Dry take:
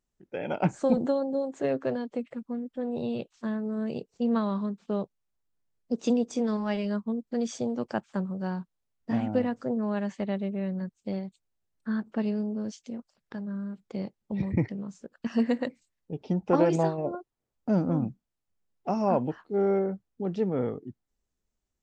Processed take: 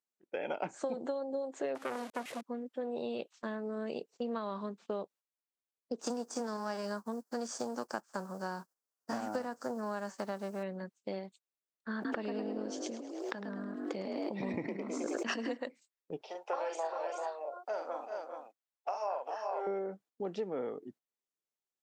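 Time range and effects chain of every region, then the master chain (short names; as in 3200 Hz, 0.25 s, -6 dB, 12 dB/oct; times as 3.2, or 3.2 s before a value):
1.75–2.41 delta modulation 64 kbps, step -39 dBFS + low shelf 180 Hz +8.5 dB + core saturation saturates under 1200 Hz
6–10.62 spectral whitening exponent 0.6 + band shelf 2800 Hz -14 dB 1.2 oct
11.94–15.57 frequency-shifting echo 0.106 s, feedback 46%, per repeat +48 Hz, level -5.5 dB + backwards sustainer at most 24 dB/s
16.21–19.67 HPF 560 Hz 24 dB/oct + tapped delay 43/390/426 ms -5.5/-11/-7 dB
whole clip: HPF 380 Hz 12 dB/oct; gate -56 dBFS, range -11 dB; compressor 6:1, threshold -34 dBFS; gain +1 dB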